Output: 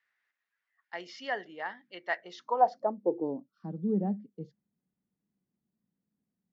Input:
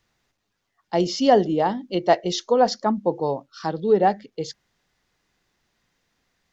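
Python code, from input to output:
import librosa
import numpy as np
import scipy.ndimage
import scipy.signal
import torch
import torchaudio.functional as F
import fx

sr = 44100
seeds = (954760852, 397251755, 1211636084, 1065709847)

y = fx.dmg_noise_band(x, sr, seeds[0], low_hz=140.0, high_hz=270.0, level_db=-52.0, at=(0.99, 2.92), fade=0.02)
y = fx.filter_sweep_bandpass(y, sr, from_hz=1800.0, to_hz=200.0, start_s=2.13, end_s=3.54, q=3.8)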